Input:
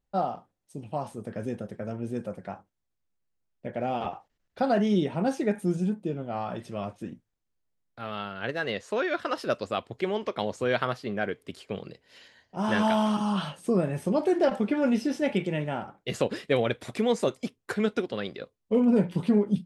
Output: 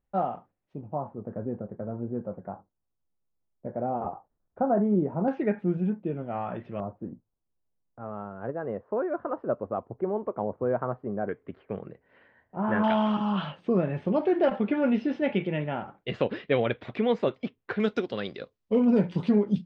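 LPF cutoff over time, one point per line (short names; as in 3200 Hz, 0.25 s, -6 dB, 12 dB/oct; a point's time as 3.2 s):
LPF 24 dB/oct
2600 Hz
from 0.81 s 1200 Hz
from 5.28 s 2500 Hz
from 6.8 s 1100 Hz
from 11.29 s 1800 Hz
from 12.84 s 3300 Hz
from 17.8 s 5700 Hz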